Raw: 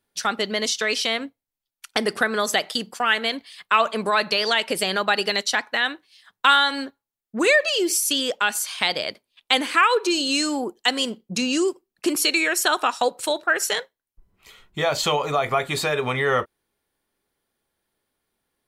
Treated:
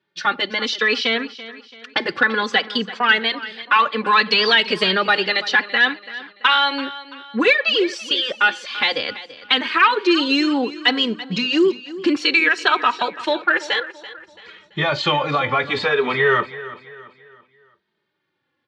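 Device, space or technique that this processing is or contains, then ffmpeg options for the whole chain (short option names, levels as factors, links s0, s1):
barber-pole flanger into a guitar amplifier: -filter_complex "[0:a]highpass=110,asettb=1/sr,asplit=3[s0][s1][s2];[s0]atrim=end=4.064[s3];[s1]atrim=start=4.06:end=4.91,asetpts=PTS-STARTPTS,afade=t=in:d=0.004:c=qsin,afade=t=out:st=0.846:d=0.004:c=qsin,highshelf=f=4900:g=11[s4];[s2]atrim=start=4.906[s5];[s3][s4]acrossfade=d=0.004:c1=hsin:c2=qsin[s6];[s6][s5]acrossfade=d=0.004:c1=qsin:c2=hsin,asplit=2[s7][s8];[s8]adelay=2.8,afreqshift=-0.61[s9];[s7][s9]amix=inputs=2:normalize=1,asoftclip=type=tanh:threshold=0.251,highpass=87,equalizer=f=87:t=q:w=4:g=6,equalizer=f=670:t=q:w=4:g=-8,equalizer=f=1700:t=q:w=4:g=3,lowpass=f=4100:w=0.5412,lowpass=f=4100:w=1.3066,aecho=1:1:335|670|1005|1340:0.158|0.065|0.0266|0.0109,volume=2.51"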